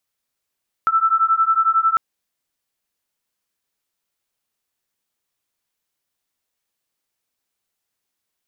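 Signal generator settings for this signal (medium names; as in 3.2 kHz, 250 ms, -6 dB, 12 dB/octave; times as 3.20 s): beating tones 1.32 kHz, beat 11 Hz, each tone -17 dBFS 1.10 s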